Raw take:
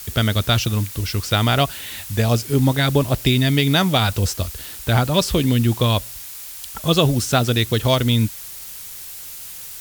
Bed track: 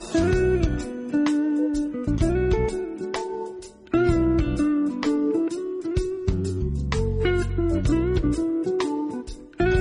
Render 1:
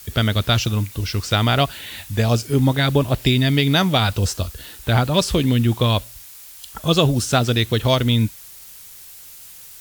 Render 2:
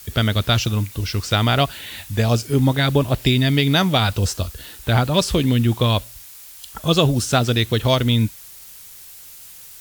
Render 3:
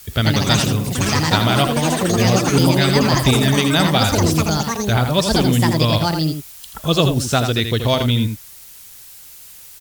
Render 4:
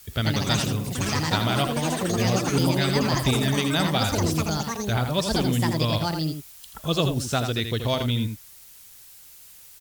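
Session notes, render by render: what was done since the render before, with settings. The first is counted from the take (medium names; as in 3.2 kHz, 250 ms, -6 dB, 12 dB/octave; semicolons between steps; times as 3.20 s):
noise print and reduce 6 dB
no audible change
ever faster or slower copies 132 ms, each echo +5 st, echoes 3; delay 82 ms -7.5 dB
trim -7.5 dB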